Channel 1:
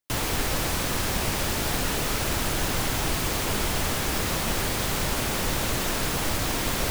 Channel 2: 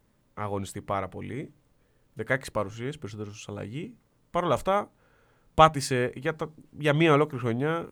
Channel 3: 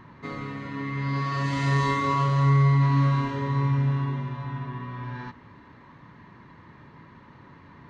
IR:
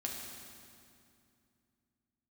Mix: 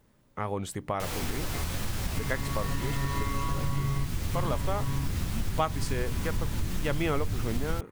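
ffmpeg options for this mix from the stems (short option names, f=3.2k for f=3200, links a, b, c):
-filter_complex "[0:a]asubboost=boost=7:cutoff=210,flanger=delay=8.6:depth=4.1:regen=64:speed=2:shape=triangular,adelay=900,volume=-1dB[a];[1:a]volume=2.5dB,asplit=2[b][c];[2:a]adelay=1300,volume=-2.5dB[d];[c]apad=whole_len=405526[e];[d][e]sidechaingate=range=-33dB:threshold=-53dB:ratio=16:detection=peak[f];[a][b][f]amix=inputs=3:normalize=0,acompressor=threshold=-28dB:ratio=3"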